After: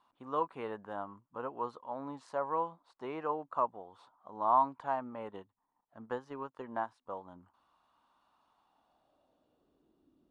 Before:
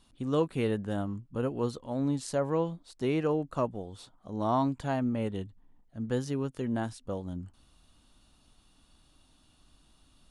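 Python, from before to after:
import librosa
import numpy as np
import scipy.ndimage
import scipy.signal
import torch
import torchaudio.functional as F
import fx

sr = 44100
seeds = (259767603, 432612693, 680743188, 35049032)

y = fx.filter_sweep_bandpass(x, sr, from_hz=1000.0, to_hz=340.0, start_s=8.48, end_s=10.07, q=3.2)
y = fx.transient(y, sr, attack_db=4, sustain_db=-5, at=(5.28, 7.06))
y = y * librosa.db_to_amplitude(6.0)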